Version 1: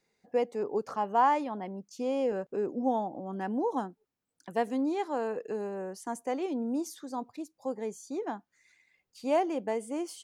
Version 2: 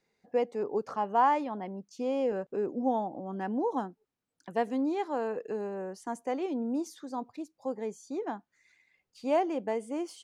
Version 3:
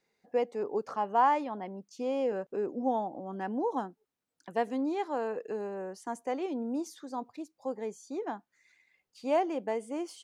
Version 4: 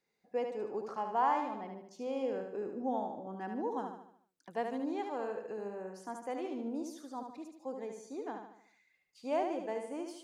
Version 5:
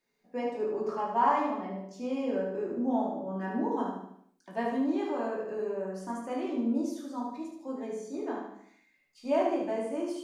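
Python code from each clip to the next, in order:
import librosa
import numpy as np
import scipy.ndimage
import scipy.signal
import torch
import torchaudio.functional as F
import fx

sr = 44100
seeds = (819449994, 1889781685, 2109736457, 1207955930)

y1 = fx.high_shelf(x, sr, hz=8900.0, db=-12.0)
y2 = fx.low_shelf(y1, sr, hz=180.0, db=-6.5)
y3 = fx.echo_feedback(y2, sr, ms=74, feedback_pct=47, wet_db=-5.5)
y3 = y3 * 10.0 ** (-6.0 / 20.0)
y4 = fx.room_shoebox(y3, sr, seeds[0], volume_m3=330.0, walls='furnished', distance_m=2.7)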